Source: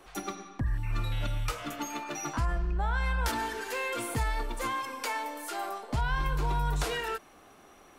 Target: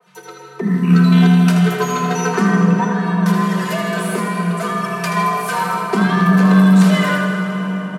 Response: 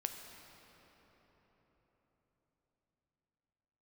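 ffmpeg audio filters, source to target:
-filter_complex "[0:a]aecho=1:1:3.6:0.97,asettb=1/sr,asplit=3[a][b][c];[a]atrim=end=2.844[d];[b]atrim=start=2.84:end=5.17,asetpts=PTS-STARTPTS,afade=t=in:d=0.004:c=qsin,afade=t=out:st=2.326:d=0.004:c=qsin,acompressor=threshold=-31dB:ratio=5[e];[c]atrim=start=5.166[f];[d][e]acrossfade=d=0.004:c1=hsin:c2=qsin[g];[g][f]acrossfade=d=0.004:c1=qsin:c2=hsin,alimiter=limit=-20dB:level=0:latency=1:release=200,dynaudnorm=f=130:g=9:m=15.5dB,aeval=exprs='0.596*(cos(1*acos(clip(val(0)/0.596,-1,1)))-cos(1*PI/2))+0.0668*(cos(3*acos(clip(val(0)/0.596,-1,1)))-cos(3*PI/2))':c=same,afreqshift=140,aecho=1:1:80|160|240|320|400|480|560:0.398|0.235|0.139|0.0818|0.0482|0.0285|0.0168[h];[1:a]atrim=start_sample=2205,asetrate=25578,aresample=44100[i];[h][i]afir=irnorm=-1:irlink=0,adynamicequalizer=threshold=0.02:dfrequency=2700:dqfactor=0.7:tfrequency=2700:tqfactor=0.7:attack=5:release=100:ratio=0.375:range=2:mode=cutabove:tftype=highshelf,volume=-2.5dB"

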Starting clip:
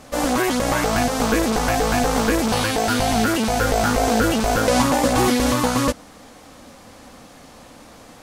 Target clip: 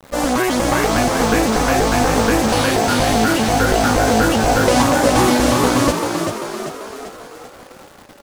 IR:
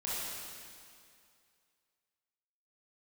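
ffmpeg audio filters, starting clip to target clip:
-filter_complex "[0:a]afftdn=nr=17:nf=-40,acrusher=bits=6:mix=0:aa=0.000001,asplit=2[a][b];[b]asplit=7[c][d][e][f][g][h][i];[c]adelay=390,afreqshift=49,volume=-5.5dB[j];[d]adelay=780,afreqshift=98,volume=-11dB[k];[e]adelay=1170,afreqshift=147,volume=-16.5dB[l];[f]adelay=1560,afreqshift=196,volume=-22dB[m];[g]adelay=1950,afreqshift=245,volume=-27.6dB[n];[h]adelay=2340,afreqshift=294,volume=-33.1dB[o];[i]adelay=2730,afreqshift=343,volume=-38.6dB[p];[j][k][l][m][n][o][p]amix=inputs=7:normalize=0[q];[a][q]amix=inputs=2:normalize=0,volume=2.5dB"

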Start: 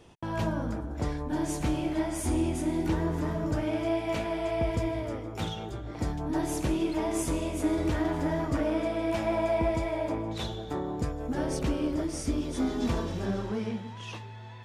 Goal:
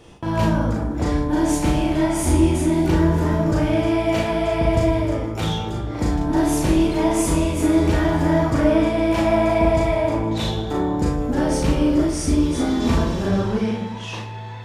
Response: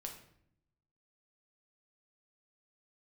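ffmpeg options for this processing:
-filter_complex "[0:a]asplit=2[a][b];[1:a]atrim=start_sample=2205,adelay=37[c];[b][c]afir=irnorm=-1:irlink=0,volume=3.5dB[d];[a][d]amix=inputs=2:normalize=0,volume=7dB"

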